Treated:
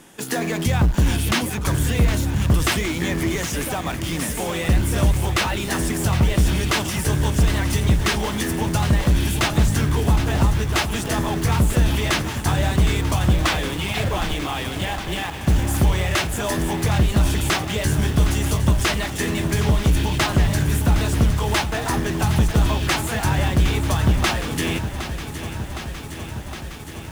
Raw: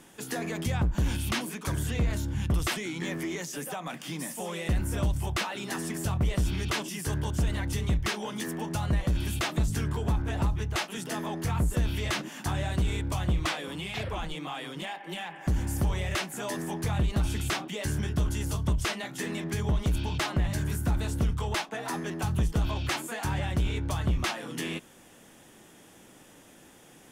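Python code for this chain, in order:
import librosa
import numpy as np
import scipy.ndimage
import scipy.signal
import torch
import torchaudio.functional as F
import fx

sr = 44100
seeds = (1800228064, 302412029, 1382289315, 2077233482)

p1 = fx.quant_dither(x, sr, seeds[0], bits=6, dither='none')
p2 = x + (p1 * 10.0 ** (-7.0 / 20.0))
p3 = fx.echo_crushed(p2, sr, ms=763, feedback_pct=80, bits=8, wet_db=-11.0)
y = p3 * 10.0 ** (6.0 / 20.0)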